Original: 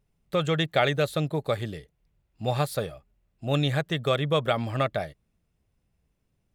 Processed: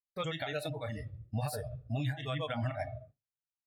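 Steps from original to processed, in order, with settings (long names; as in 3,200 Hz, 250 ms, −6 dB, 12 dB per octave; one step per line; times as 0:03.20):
low-shelf EQ 240 Hz +2.5 dB
rectangular room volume 830 cubic metres, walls mixed, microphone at 0.48 metres
downward compressor 6 to 1, threshold −34 dBFS, peak gain reduction 16.5 dB
noise reduction from a noise print of the clip's start 22 dB
dynamic equaliser 330 Hz, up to −5 dB, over −51 dBFS, Q 1
brickwall limiter −33 dBFS, peak gain reduction 9 dB
time stretch by overlap-add 0.56×, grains 144 ms
downward expander −58 dBFS
level +8 dB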